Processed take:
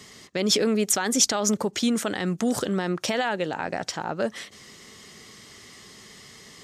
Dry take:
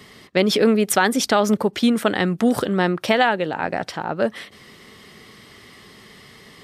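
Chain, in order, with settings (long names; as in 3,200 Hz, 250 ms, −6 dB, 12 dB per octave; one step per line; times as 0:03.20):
brickwall limiter −11 dBFS, peak gain reduction 7.5 dB
parametric band 6,700 Hz +14 dB 0.77 octaves
level −4 dB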